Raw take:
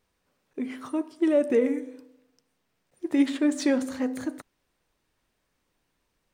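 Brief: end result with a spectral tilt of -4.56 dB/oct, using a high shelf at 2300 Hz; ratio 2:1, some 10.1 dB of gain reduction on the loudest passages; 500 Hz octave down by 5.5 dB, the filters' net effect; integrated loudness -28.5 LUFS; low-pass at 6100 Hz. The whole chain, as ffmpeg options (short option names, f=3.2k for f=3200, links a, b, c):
-af "lowpass=6.1k,equalizer=f=500:t=o:g=-6,highshelf=f=2.3k:g=-8,acompressor=threshold=-38dB:ratio=2,volume=9dB"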